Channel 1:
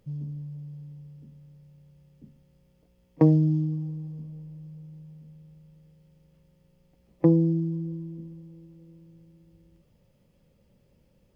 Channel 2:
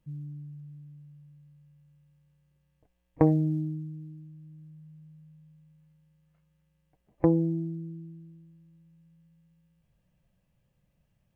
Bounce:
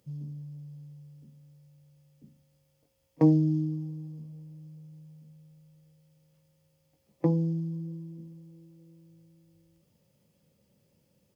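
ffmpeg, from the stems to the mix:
-filter_complex "[0:a]highpass=100,bass=f=250:g=2,treble=f=4k:g=9,bandreject=f=60:t=h:w=6,bandreject=f=120:t=h:w=6,bandreject=f=180:t=h:w=6,bandreject=f=240:t=h:w=6,bandreject=f=300:t=h:w=6,bandreject=f=360:t=h:w=6,bandreject=f=420:t=h:w=6,volume=-4.5dB[a];[1:a]asplit=3[b][c][d];[b]bandpass=f=300:t=q:w=8,volume=0dB[e];[c]bandpass=f=870:t=q:w=8,volume=-6dB[f];[d]bandpass=f=2.24k:t=q:w=8,volume=-9dB[g];[e][f][g]amix=inputs=3:normalize=0,volume=-1,adelay=18,volume=-0.5dB[h];[a][h]amix=inputs=2:normalize=0"

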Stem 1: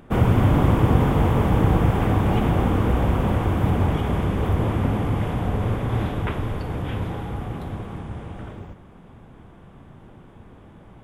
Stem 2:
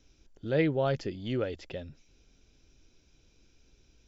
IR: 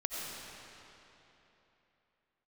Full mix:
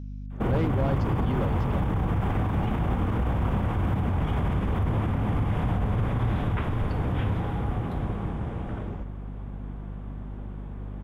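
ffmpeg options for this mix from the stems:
-filter_complex "[0:a]adynamicequalizer=threshold=0.0178:dfrequency=410:dqfactor=0.87:tfrequency=410:tqfactor=0.87:attack=5:release=100:ratio=0.375:range=3:mode=cutabove:tftype=bell,acompressor=threshold=-17dB:ratio=6,alimiter=limit=-20dB:level=0:latency=1:release=37,adelay=300,volume=2dB[a];[1:a]asoftclip=type=hard:threshold=-24.5dB,volume=-1.5dB[b];[a][b]amix=inputs=2:normalize=0,highshelf=f=3.3k:g=-10,aeval=exprs='val(0)+0.0178*(sin(2*PI*50*n/s)+sin(2*PI*2*50*n/s)/2+sin(2*PI*3*50*n/s)/3+sin(2*PI*4*50*n/s)/4+sin(2*PI*5*50*n/s)/5)':c=same"

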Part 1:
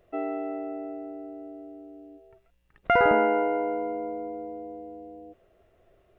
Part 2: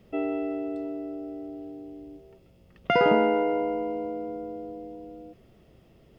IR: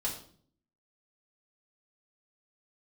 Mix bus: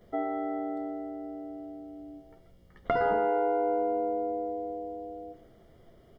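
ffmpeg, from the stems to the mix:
-filter_complex "[0:a]acompressor=threshold=-27dB:ratio=5,volume=-2.5dB,asplit=2[a][b];[b]volume=-4.5dB[c];[1:a]acompressor=threshold=-45dB:ratio=1.5,adelay=11,volume=-3.5dB[d];[2:a]atrim=start_sample=2205[e];[c][e]afir=irnorm=-1:irlink=0[f];[a][d][f]amix=inputs=3:normalize=0,asuperstop=centerf=2600:order=8:qfactor=5.6"

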